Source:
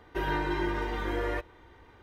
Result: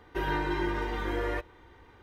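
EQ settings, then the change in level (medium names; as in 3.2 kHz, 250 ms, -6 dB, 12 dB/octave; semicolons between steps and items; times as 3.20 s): band-stop 640 Hz, Q 12; 0.0 dB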